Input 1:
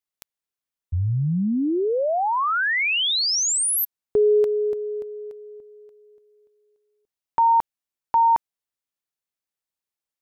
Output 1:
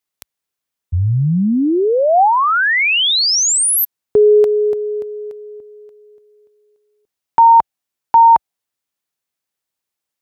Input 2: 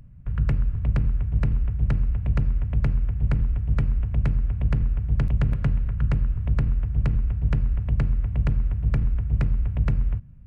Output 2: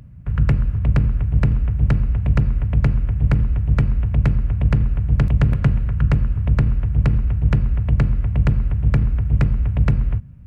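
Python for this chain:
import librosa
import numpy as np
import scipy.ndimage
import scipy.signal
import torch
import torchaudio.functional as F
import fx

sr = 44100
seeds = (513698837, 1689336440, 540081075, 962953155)

y = scipy.signal.sosfilt(scipy.signal.butter(2, 52.0, 'highpass', fs=sr, output='sos'), x)
y = fx.dynamic_eq(y, sr, hz=760.0, q=3.4, threshold_db=-39.0, ratio=5.0, max_db=5)
y = F.gain(torch.from_numpy(y), 7.5).numpy()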